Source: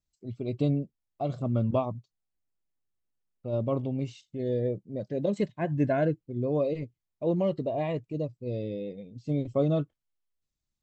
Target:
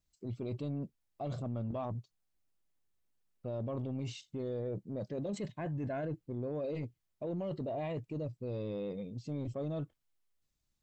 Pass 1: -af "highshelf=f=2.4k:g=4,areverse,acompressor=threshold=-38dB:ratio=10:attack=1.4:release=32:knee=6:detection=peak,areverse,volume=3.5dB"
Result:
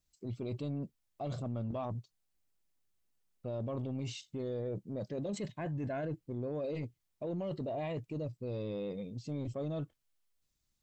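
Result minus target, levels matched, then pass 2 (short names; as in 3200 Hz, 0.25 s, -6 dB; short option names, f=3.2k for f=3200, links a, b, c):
4000 Hz band +2.5 dB
-af "areverse,acompressor=threshold=-38dB:ratio=10:attack=1.4:release=32:knee=6:detection=peak,areverse,volume=3.5dB"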